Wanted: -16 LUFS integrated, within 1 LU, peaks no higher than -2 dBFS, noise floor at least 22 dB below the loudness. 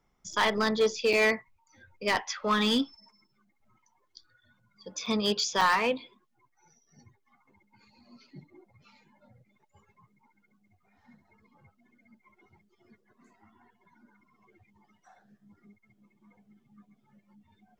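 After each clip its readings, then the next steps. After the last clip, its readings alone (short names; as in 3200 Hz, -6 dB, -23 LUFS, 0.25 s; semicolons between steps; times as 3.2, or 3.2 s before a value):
clipped 0.4%; flat tops at -19.0 dBFS; dropouts 4; longest dropout 4.6 ms; loudness -27.5 LUFS; peak -19.0 dBFS; loudness target -16.0 LUFS
-> clip repair -19 dBFS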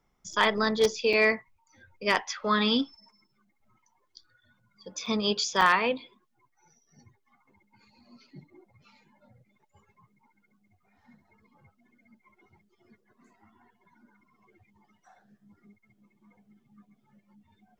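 clipped 0.0%; dropouts 4; longest dropout 4.6 ms
-> interpolate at 0.33/1.13/5.06/5.61, 4.6 ms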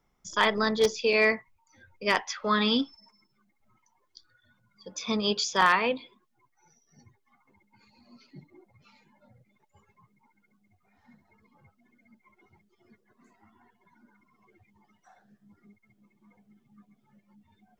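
dropouts 0; loudness -26.0 LUFS; peak -10.0 dBFS; loudness target -16.0 LUFS
-> gain +10 dB; limiter -2 dBFS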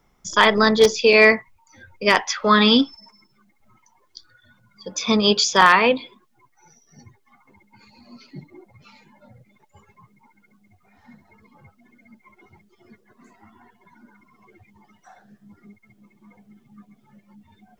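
loudness -16.5 LUFS; peak -2.0 dBFS; noise floor -63 dBFS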